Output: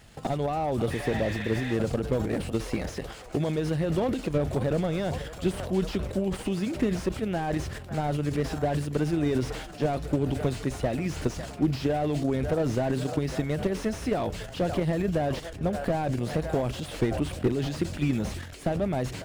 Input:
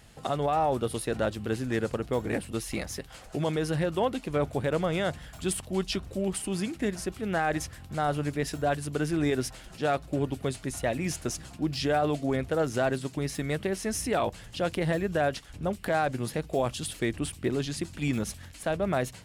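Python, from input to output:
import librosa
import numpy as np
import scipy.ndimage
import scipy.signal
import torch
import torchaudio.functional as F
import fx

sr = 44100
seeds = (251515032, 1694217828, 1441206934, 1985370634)

p1 = scipy.signal.medfilt(x, 3)
p2 = fx.dynamic_eq(p1, sr, hz=1200.0, q=0.79, threshold_db=-42.0, ratio=4.0, max_db=-6)
p3 = p2 + fx.echo_wet_bandpass(p2, sr, ms=551, feedback_pct=63, hz=920.0, wet_db=-16, dry=0)
p4 = fx.transient(p3, sr, attack_db=7, sustain_db=11)
p5 = fx.spec_repair(p4, sr, seeds[0], start_s=0.93, length_s=0.78, low_hz=970.0, high_hz=4300.0, source='after')
y = fx.slew_limit(p5, sr, full_power_hz=44.0)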